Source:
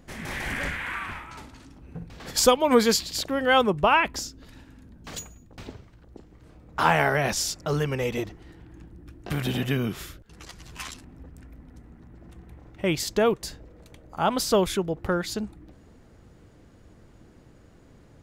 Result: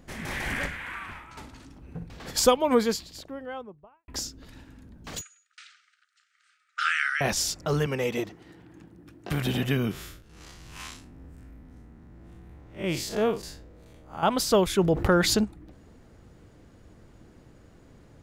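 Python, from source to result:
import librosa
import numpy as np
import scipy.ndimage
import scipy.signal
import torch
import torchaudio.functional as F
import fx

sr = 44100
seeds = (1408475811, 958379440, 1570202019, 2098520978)

y = fx.studio_fade_out(x, sr, start_s=2.04, length_s=2.04)
y = fx.brickwall_bandpass(y, sr, low_hz=1200.0, high_hz=9500.0, at=(5.21, 7.21))
y = fx.highpass(y, sr, hz=140.0, slope=12, at=(7.86, 9.31))
y = fx.spec_blur(y, sr, span_ms=108.0, at=(9.91, 14.23))
y = fx.env_flatten(y, sr, amount_pct=50, at=(14.77, 15.43), fade=0.02)
y = fx.edit(y, sr, fx.clip_gain(start_s=0.66, length_s=0.71, db=-5.0), tone=tone)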